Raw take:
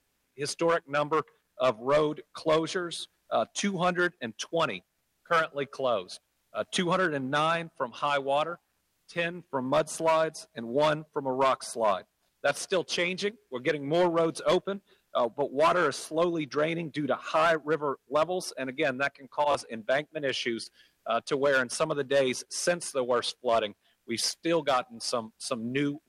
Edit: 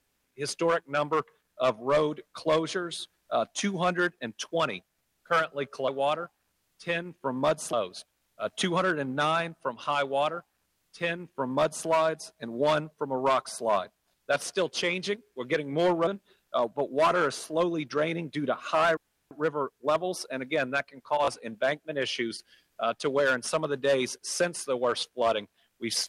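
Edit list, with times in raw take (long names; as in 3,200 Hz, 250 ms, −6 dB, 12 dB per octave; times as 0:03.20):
0:08.17–0:10.02: duplicate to 0:05.88
0:14.22–0:14.68: remove
0:17.58: splice in room tone 0.34 s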